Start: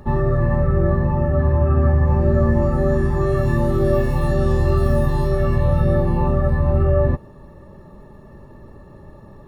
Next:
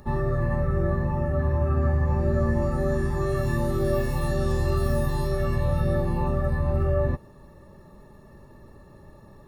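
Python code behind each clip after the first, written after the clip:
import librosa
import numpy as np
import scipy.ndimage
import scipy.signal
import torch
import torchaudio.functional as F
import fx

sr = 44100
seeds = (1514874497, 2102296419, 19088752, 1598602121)

y = fx.high_shelf(x, sr, hz=2700.0, db=10.0)
y = fx.notch(y, sr, hz=3100.0, q=7.4)
y = y * 10.0 ** (-7.0 / 20.0)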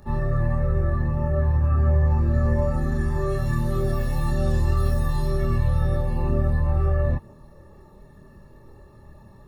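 y = fx.chorus_voices(x, sr, voices=4, hz=0.53, base_ms=26, depth_ms=1.3, mix_pct=45)
y = y * 10.0 ** (2.0 / 20.0)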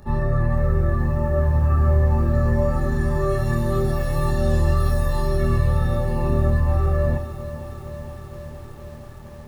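y = fx.echo_feedback(x, sr, ms=75, feedback_pct=58, wet_db=-14.0)
y = fx.echo_crushed(y, sr, ms=464, feedback_pct=80, bits=8, wet_db=-13.0)
y = y * 10.0 ** (3.0 / 20.0)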